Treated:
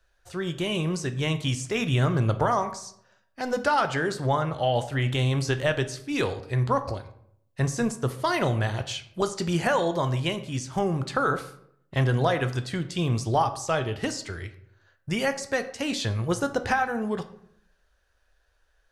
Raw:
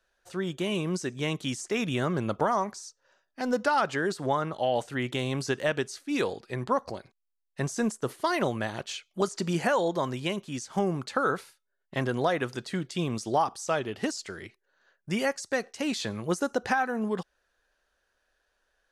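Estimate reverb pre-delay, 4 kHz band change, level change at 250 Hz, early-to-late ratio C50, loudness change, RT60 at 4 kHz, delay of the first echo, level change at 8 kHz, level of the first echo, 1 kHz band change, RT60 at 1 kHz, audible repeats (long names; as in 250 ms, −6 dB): 9 ms, +4.0 dB, +1.5 dB, 13.5 dB, +3.0 dB, 0.40 s, no echo audible, +2.0 dB, no echo audible, +2.5 dB, 0.65 s, no echo audible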